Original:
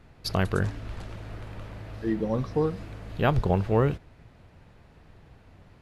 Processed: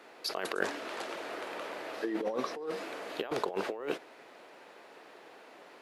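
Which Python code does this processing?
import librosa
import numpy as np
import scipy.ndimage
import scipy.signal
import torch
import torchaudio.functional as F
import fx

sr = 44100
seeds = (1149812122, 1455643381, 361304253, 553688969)

y = scipy.signal.sosfilt(scipy.signal.butter(4, 350.0, 'highpass', fs=sr, output='sos'), x)
y = fx.over_compress(y, sr, threshold_db=-36.0, ratio=-1.0)
y = y * 10.0 ** (1.5 / 20.0)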